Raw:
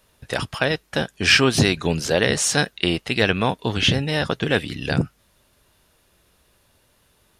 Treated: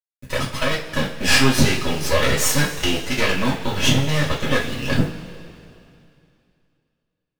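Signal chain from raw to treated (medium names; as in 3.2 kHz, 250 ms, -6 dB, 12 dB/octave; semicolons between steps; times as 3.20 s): companding laws mixed up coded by A; comb of notches 760 Hz; in parallel at -3 dB: compression, threshold -26 dBFS, peak gain reduction 13.5 dB; on the sum: half-wave rectifier; bit crusher 8-bit; two-slope reverb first 0.28 s, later 2.6 s, from -18 dB, DRR -6 dB; trim -2 dB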